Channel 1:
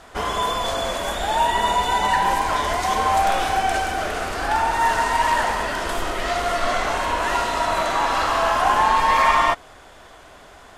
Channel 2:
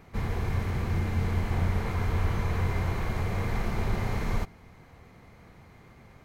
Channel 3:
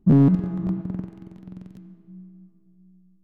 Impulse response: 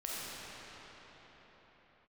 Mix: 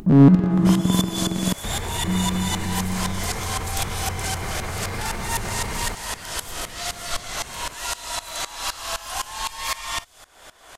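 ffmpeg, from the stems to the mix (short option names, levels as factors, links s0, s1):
-filter_complex "[0:a]highshelf=f=5200:g=10,acrossover=split=130|3000[s0][s1][s2];[s1]acompressor=threshold=0.02:ratio=3[s3];[s0][s3][s2]amix=inputs=3:normalize=0,aeval=exprs='val(0)*pow(10,-19*if(lt(mod(-3.9*n/s,1),2*abs(-3.9)/1000),1-mod(-3.9*n/s,1)/(2*abs(-3.9)/1000),(mod(-3.9*n/s,1)-2*abs(-3.9)/1000)/(1-2*abs(-3.9)/1000))/20)':c=same,adelay=500,volume=0.501[s4];[1:a]alimiter=level_in=1.41:limit=0.0631:level=0:latency=1:release=27,volume=0.708,acompressor=threshold=0.0126:ratio=1.5,adelay=1500,volume=1.19[s5];[2:a]acompressor=mode=upward:threshold=0.1:ratio=2.5,volume=1.33,asplit=3[s6][s7][s8];[s6]atrim=end=1.53,asetpts=PTS-STARTPTS,afade=t=out:st=1.526:d=0.004:c=hsin[s9];[s7]atrim=start=1.53:end=2.04,asetpts=PTS-STARTPTS,volume=0[s10];[s8]atrim=start=2.04,asetpts=PTS-STARTPTS,afade=t=in:d=0.004:c=hsin[s11];[s9][s10][s11]concat=n=3:v=0:a=1[s12];[s4][s5][s12]amix=inputs=3:normalize=0,lowshelf=f=470:g=-6.5,dynaudnorm=f=110:g=3:m=3.55"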